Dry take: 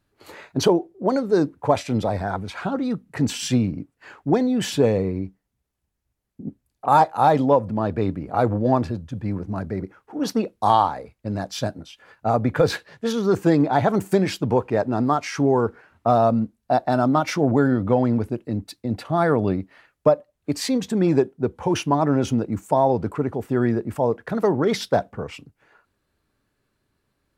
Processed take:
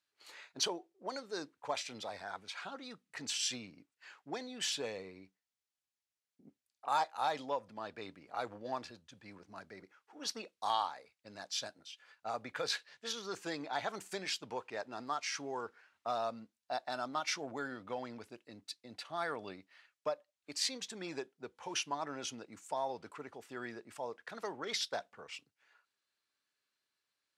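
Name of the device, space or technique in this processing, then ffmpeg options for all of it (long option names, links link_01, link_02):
piezo pickup straight into a mixer: -af "lowpass=5100,aderivative,volume=1.5dB"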